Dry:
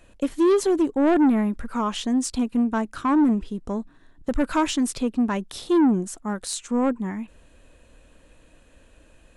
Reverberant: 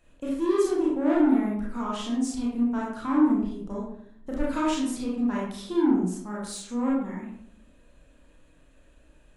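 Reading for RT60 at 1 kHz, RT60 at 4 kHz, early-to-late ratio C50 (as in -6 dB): 0.60 s, 0.40 s, 1.0 dB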